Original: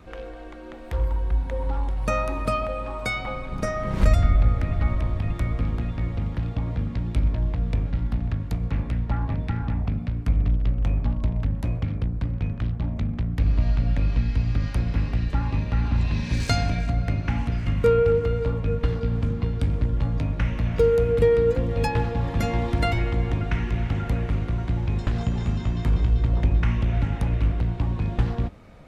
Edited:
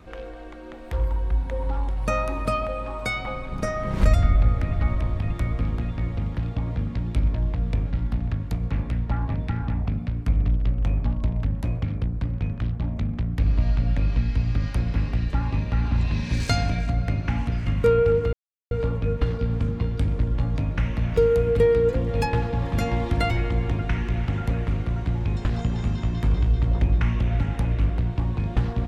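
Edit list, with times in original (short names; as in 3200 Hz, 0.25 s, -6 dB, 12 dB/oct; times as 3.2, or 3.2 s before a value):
18.33 insert silence 0.38 s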